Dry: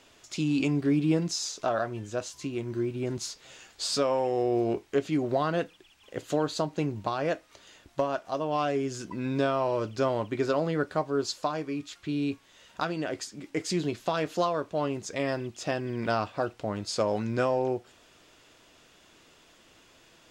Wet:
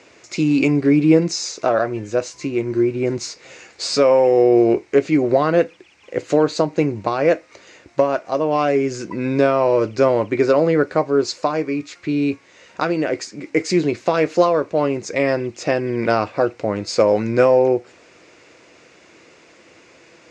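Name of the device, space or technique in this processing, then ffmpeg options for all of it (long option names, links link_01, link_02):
car door speaker: -af "highpass=88,equalizer=frequency=340:width_type=q:width=4:gain=5,equalizer=frequency=500:width_type=q:width=4:gain=7,equalizer=frequency=2200:width_type=q:width=4:gain=8,equalizer=frequency=3300:width_type=q:width=4:gain=-9,lowpass=frequency=7300:width=0.5412,lowpass=frequency=7300:width=1.3066,volume=8dB"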